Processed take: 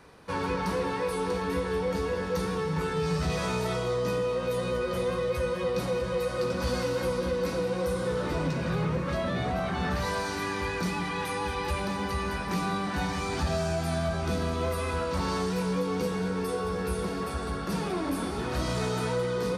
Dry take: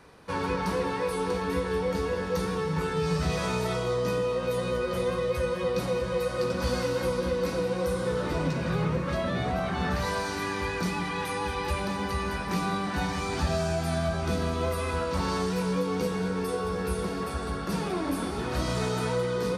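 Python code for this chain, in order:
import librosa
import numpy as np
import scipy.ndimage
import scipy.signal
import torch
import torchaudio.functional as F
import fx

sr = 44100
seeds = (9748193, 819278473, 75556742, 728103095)

y = 10.0 ** (-18.5 / 20.0) * np.tanh(x / 10.0 ** (-18.5 / 20.0))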